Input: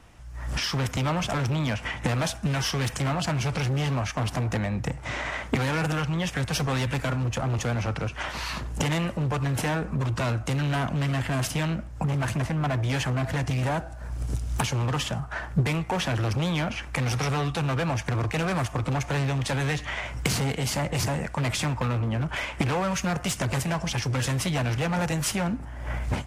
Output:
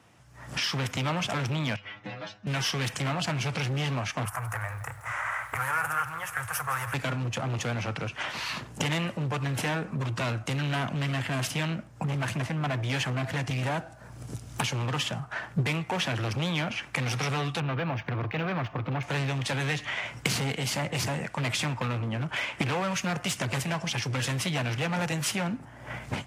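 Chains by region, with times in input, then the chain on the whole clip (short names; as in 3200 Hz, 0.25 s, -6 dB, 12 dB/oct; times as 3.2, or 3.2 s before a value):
1.76–2.47 LPF 4700 Hz 24 dB/oct + metallic resonator 100 Hz, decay 0.26 s, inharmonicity 0.002
4.25–6.94 EQ curve 110 Hz 0 dB, 200 Hz -28 dB, 1300 Hz +9 dB, 2100 Hz -3 dB, 3900 Hz -19 dB, 11000 Hz +12 dB + lo-fi delay 0.167 s, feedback 55%, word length 8-bit, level -13 dB
17.6–19.03 air absorption 250 m + decimation joined by straight lines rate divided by 2×
whole clip: HPF 100 Hz 24 dB/oct; dynamic EQ 2800 Hz, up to +5 dB, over -44 dBFS, Q 0.83; gain -3.5 dB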